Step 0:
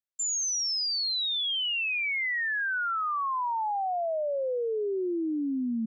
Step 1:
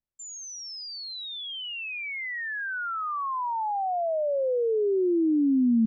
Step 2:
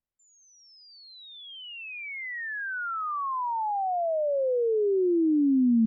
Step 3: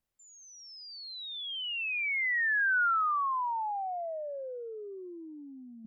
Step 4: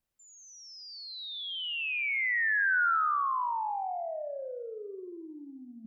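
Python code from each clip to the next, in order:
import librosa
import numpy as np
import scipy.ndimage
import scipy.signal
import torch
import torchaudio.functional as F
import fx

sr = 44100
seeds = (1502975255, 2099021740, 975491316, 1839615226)

y1 = fx.tilt_eq(x, sr, slope=-4.0)
y2 = scipy.signal.sosfilt(scipy.signal.butter(2, 2200.0, 'lowpass', fs=sr, output='sos'), y1)
y3 = fx.over_compress(y2, sr, threshold_db=-32.0, ratio=-0.5)
y4 = fx.echo_feedback(y3, sr, ms=88, feedback_pct=51, wet_db=-9.5)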